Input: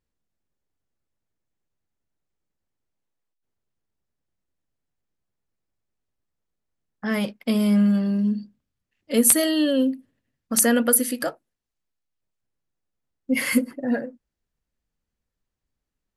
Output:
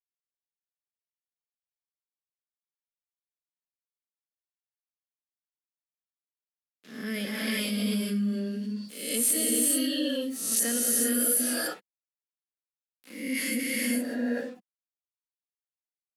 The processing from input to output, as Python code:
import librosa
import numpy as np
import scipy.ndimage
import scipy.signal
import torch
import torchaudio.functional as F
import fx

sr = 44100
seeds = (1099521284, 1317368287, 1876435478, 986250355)

y = fx.spec_swells(x, sr, rise_s=0.44)
y = 10.0 ** (-9.0 / 20.0) * np.tanh(y / 10.0 ** (-9.0 / 20.0))
y = fx.low_shelf(y, sr, hz=410.0, db=-5.0)
y = np.sign(y) * np.maximum(np.abs(y) - 10.0 ** (-51.5 / 20.0), 0.0)
y = scipy.signal.sosfilt(scipy.signal.butter(4, 220.0, 'highpass', fs=sr, output='sos'), y)
y = fx.peak_eq(y, sr, hz=900.0, db=-13.5, octaves=2.0)
y = fx.rev_gated(y, sr, seeds[0], gate_ms=460, shape='rising', drr_db=-4.5)
y = fx.rotary(y, sr, hz=0.75)
y = fx.env_flatten(y, sr, amount_pct=50)
y = F.gain(torch.from_numpy(y), -5.5).numpy()